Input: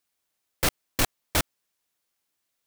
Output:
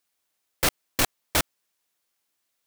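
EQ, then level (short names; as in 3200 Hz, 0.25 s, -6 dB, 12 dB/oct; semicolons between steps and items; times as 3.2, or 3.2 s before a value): low shelf 210 Hz -5 dB; +2.0 dB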